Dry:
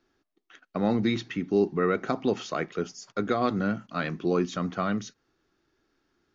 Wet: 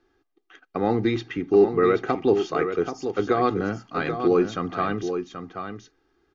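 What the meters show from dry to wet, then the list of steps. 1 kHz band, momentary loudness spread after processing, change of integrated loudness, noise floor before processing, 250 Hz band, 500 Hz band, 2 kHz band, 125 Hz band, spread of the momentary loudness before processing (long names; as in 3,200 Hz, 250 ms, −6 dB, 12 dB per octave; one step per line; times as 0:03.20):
+5.5 dB, 16 LU, +5.0 dB, −78 dBFS, +2.5 dB, +7.0 dB, +2.5 dB, +1.0 dB, 8 LU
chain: high-shelf EQ 4,600 Hz −11.5 dB
comb filter 2.5 ms, depth 57%
single-tap delay 781 ms −8 dB
level +3.5 dB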